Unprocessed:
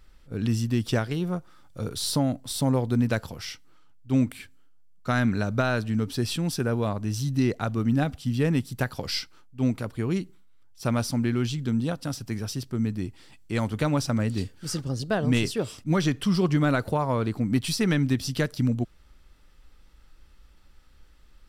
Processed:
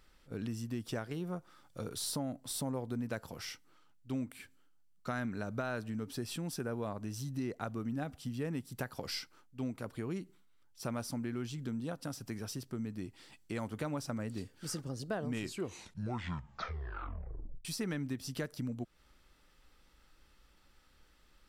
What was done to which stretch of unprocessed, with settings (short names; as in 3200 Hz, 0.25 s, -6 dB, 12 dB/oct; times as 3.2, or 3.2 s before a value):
15.25 tape stop 2.40 s
whole clip: dynamic EQ 3700 Hz, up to -6 dB, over -48 dBFS, Q 0.89; compressor 2.5:1, threshold -32 dBFS; low shelf 130 Hz -10.5 dB; gain -3 dB